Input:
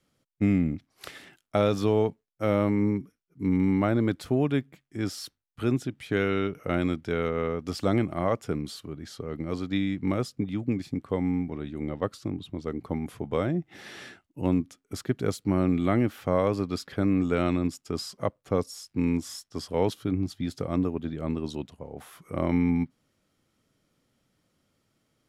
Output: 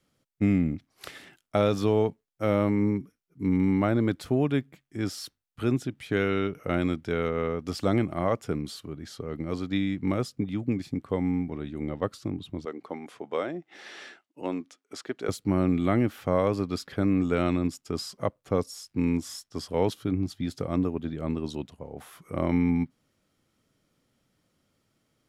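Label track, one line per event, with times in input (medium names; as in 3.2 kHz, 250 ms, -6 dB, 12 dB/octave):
12.650000	15.290000	band-pass 390–7500 Hz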